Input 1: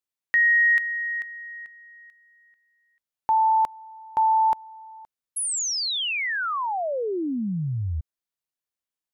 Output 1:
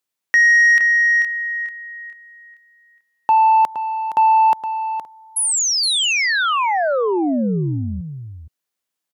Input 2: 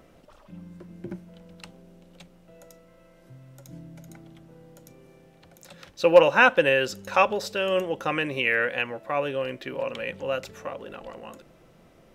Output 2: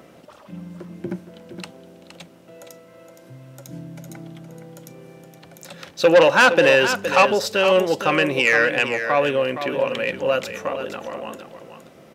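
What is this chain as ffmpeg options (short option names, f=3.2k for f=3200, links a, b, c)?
-filter_complex "[0:a]asoftclip=type=tanh:threshold=-16dB,highpass=130,asplit=2[a][b];[b]aecho=0:1:467:0.335[c];[a][c]amix=inputs=2:normalize=0,volume=8.5dB"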